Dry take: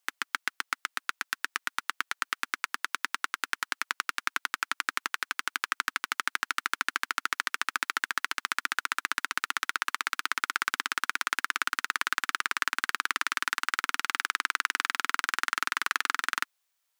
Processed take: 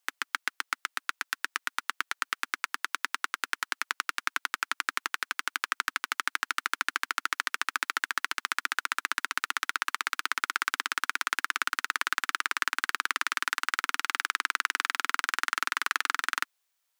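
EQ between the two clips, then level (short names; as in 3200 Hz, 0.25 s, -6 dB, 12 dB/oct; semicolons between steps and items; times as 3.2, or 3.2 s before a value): HPF 260 Hz 24 dB/oct; 0.0 dB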